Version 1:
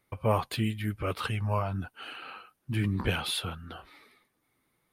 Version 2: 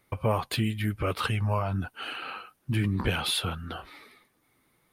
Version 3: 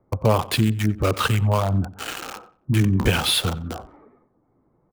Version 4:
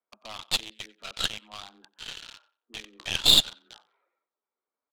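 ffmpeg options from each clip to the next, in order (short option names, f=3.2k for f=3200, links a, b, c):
-af "acompressor=threshold=-32dB:ratio=2,volume=6dB"
-filter_complex "[0:a]acrossover=split=190|1000[a][b][c];[c]aeval=exprs='val(0)*gte(abs(val(0)),0.0211)':c=same[d];[a][b][d]amix=inputs=3:normalize=0,asplit=2[e][f];[f]adelay=91,lowpass=f=3.2k:p=1,volume=-17.5dB,asplit=2[g][h];[h]adelay=91,lowpass=f=3.2k:p=1,volume=0.31,asplit=2[i][j];[j]adelay=91,lowpass=f=3.2k:p=1,volume=0.31[k];[e][g][i][k]amix=inputs=4:normalize=0,volume=8dB"
-af "bandpass=f=3.6k:t=q:w=2.8:csg=0,afreqshift=110,aeval=exprs='0.316*(cos(1*acos(clip(val(0)/0.316,-1,1)))-cos(1*PI/2))+0.0316*(cos(6*acos(clip(val(0)/0.316,-1,1)))-cos(6*PI/2))+0.0251*(cos(7*acos(clip(val(0)/0.316,-1,1)))-cos(7*PI/2))':c=same,volume=5.5dB"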